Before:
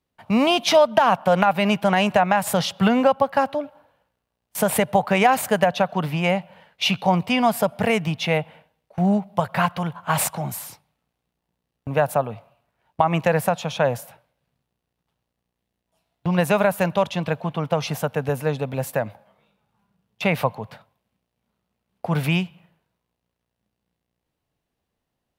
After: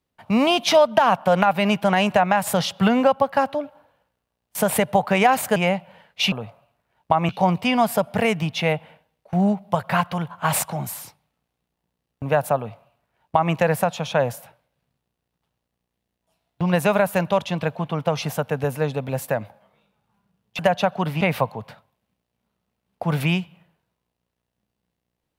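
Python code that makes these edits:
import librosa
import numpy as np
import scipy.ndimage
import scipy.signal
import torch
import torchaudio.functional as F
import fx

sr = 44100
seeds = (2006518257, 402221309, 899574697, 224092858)

y = fx.edit(x, sr, fx.move(start_s=5.56, length_s=0.62, to_s=20.24),
    fx.duplicate(start_s=12.21, length_s=0.97, to_s=6.94), tone=tone)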